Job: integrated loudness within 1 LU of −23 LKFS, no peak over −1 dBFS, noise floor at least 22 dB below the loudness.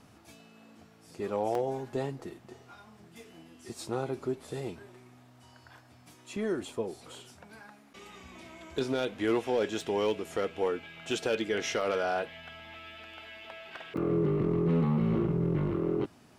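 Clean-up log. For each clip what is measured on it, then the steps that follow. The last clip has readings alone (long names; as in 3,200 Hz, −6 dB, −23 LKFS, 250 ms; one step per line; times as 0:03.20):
share of clipped samples 0.3%; peaks flattened at −20.5 dBFS; number of dropouts 4; longest dropout 2.3 ms; integrated loudness −31.5 LKFS; sample peak −20.5 dBFS; target loudness −23.0 LKFS
→ clipped peaks rebuilt −20.5 dBFS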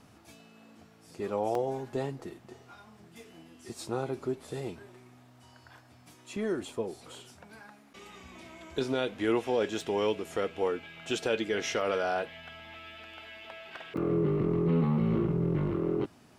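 share of clipped samples 0.0%; number of dropouts 4; longest dropout 2.3 ms
→ repair the gap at 0:01.55/0:09.81/0:11.81/0:13.97, 2.3 ms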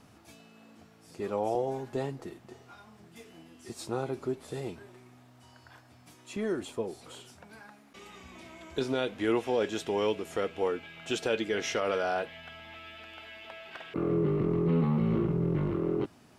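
number of dropouts 0; integrated loudness −31.5 LKFS; sample peak −15.5 dBFS; target loudness −23.0 LKFS
→ level +8.5 dB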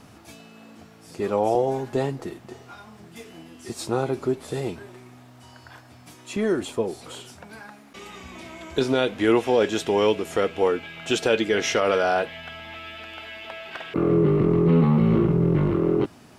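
integrated loudness −23.0 LKFS; sample peak −7.0 dBFS; background noise floor −49 dBFS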